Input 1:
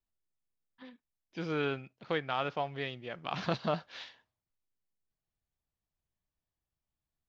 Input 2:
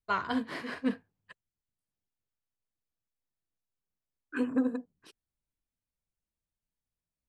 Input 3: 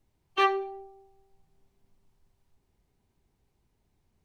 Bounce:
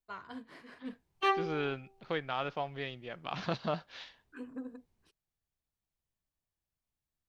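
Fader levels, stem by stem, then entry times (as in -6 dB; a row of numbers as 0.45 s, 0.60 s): -2.0 dB, -14.5 dB, -5.0 dB; 0.00 s, 0.00 s, 0.85 s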